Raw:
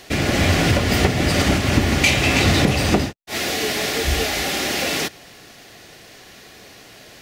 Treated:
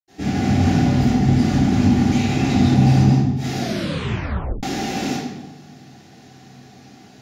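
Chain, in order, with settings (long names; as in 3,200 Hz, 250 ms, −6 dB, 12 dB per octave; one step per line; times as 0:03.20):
0:00.87–0:01.60: sub-octave generator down 2 octaves, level +2 dB
brickwall limiter −10.5 dBFS, peak gain reduction 9 dB
hollow resonant body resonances 250/780 Hz, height 16 dB, ringing for 50 ms
convolution reverb RT60 1.1 s, pre-delay 76 ms
0:03.59: tape stop 1.04 s
level −5 dB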